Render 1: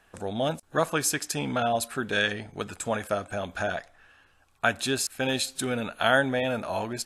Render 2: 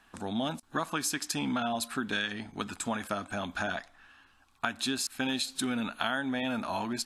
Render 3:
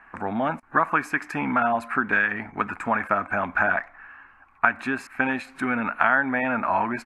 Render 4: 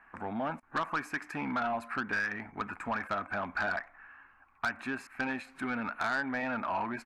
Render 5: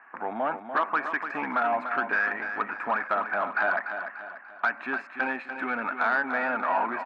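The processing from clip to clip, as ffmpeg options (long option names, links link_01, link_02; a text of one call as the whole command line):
ffmpeg -i in.wav -af "equalizer=frequency=125:width_type=o:width=1:gain=-5,equalizer=frequency=250:width_type=o:width=1:gain=9,equalizer=frequency=500:width_type=o:width=1:gain=-9,equalizer=frequency=1000:width_type=o:width=1:gain=6,equalizer=frequency=4000:width_type=o:width=1:gain=5,acompressor=threshold=-25dB:ratio=6,volume=-2.5dB" out.wav
ffmpeg -i in.wav -af "firequalizer=gain_entry='entry(230,0);entry(1000,9);entry(2200,9);entry(3400,-19)':delay=0.05:min_phase=1,volume=4dB" out.wav
ffmpeg -i in.wav -af "asoftclip=type=tanh:threshold=-16.5dB,volume=-8dB" out.wav
ffmpeg -i in.wav -filter_complex "[0:a]highpass=390,lowpass=2200,asplit=2[link_01][link_02];[link_02]aecho=0:1:293|586|879|1172|1465:0.376|0.169|0.0761|0.0342|0.0154[link_03];[link_01][link_03]amix=inputs=2:normalize=0,volume=7.5dB" out.wav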